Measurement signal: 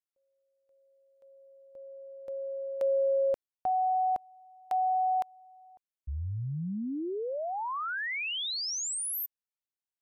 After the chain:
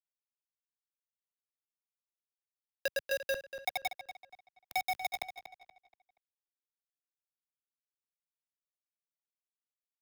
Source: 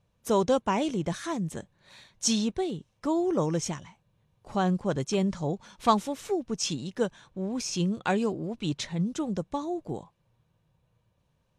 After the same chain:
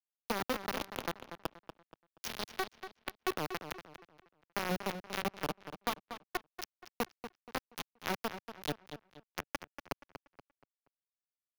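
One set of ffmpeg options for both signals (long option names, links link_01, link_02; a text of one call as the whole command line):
ffmpeg -i in.wav -filter_complex "[0:a]asplit=2[link_01][link_02];[link_02]asoftclip=type=hard:threshold=-20.5dB,volume=-10.5dB[link_03];[link_01][link_03]amix=inputs=2:normalize=0,acompressor=threshold=-32dB:ratio=2:attack=0.29:release=811:detection=rms,flanger=delay=5.2:depth=9.3:regen=67:speed=0.62:shape=sinusoidal,acrusher=bits=4:mix=0:aa=0.000001,acrossover=split=130|4100[link_04][link_05][link_06];[link_04]acompressor=threshold=-57dB:ratio=4[link_07];[link_05]acompressor=threshold=-37dB:ratio=4[link_08];[link_06]acompressor=threshold=-46dB:ratio=4[link_09];[link_07][link_08][link_09]amix=inputs=3:normalize=0,equalizer=frequency=7900:width_type=o:width=0.36:gain=-13,asplit=2[link_10][link_11];[link_11]adelay=238,lowpass=frequency=4800:poles=1,volume=-10dB,asplit=2[link_12][link_13];[link_13]adelay=238,lowpass=frequency=4800:poles=1,volume=0.35,asplit=2[link_14][link_15];[link_15]adelay=238,lowpass=frequency=4800:poles=1,volume=0.35,asplit=2[link_16][link_17];[link_17]adelay=238,lowpass=frequency=4800:poles=1,volume=0.35[link_18];[link_12][link_14][link_16][link_18]amix=inputs=4:normalize=0[link_19];[link_10][link_19]amix=inputs=2:normalize=0,volume=5.5dB" out.wav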